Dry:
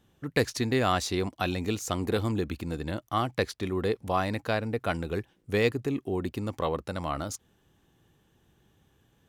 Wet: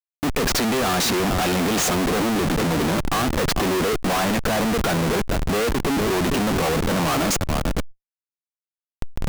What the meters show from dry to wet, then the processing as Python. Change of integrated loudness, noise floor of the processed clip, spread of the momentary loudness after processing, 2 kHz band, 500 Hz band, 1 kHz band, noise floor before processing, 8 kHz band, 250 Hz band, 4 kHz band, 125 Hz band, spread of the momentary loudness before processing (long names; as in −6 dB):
+8.5 dB, below −85 dBFS, 4 LU, +9.0 dB, +7.0 dB, +8.5 dB, −68 dBFS, +14.5 dB, +9.5 dB, +11.5 dB, +7.0 dB, 8 LU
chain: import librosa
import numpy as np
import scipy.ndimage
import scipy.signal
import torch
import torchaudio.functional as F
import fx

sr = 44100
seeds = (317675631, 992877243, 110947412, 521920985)

p1 = fx.cvsd(x, sr, bps=64000)
p2 = fx.recorder_agc(p1, sr, target_db=-16.0, rise_db_per_s=6.4, max_gain_db=30)
p3 = fx.fold_sine(p2, sr, drive_db=6, ceiling_db=-11.0)
p4 = scipy.signal.sosfilt(scipy.signal.cheby1(6, 1.0, 160.0, 'highpass', fs=sr, output='sos'), p3)
p5 = fx.high_shelf(p4, sr, hz=8400.0, db=-2.5)
p6 = p5 + fx.echo_feedback(p5, sr, ms=447, feedback_pct=27, wet_db=-17.5, dry=0)
p7 = fx.schmitt(p6, sr, flips_db=-33.5)
p8 = fx.sustainer(p7, sr, db_per_s=130.0)
y = p8 * librosa.db_to_amplitude(2.0)